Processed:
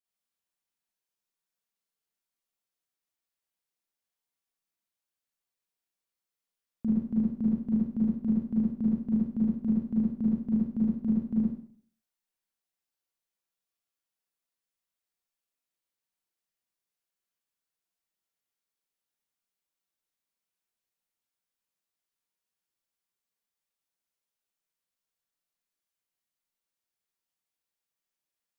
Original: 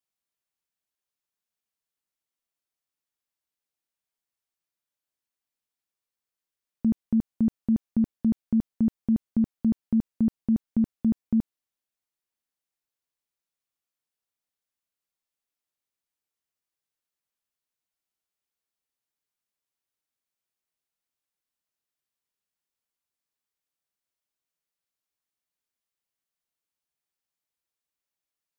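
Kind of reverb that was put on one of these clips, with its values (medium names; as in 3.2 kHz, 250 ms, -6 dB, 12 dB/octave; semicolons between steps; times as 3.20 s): Schroeder reverb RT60 0.53 s, combs from 33 ms, DRR -6.5 dB; trim -8 dB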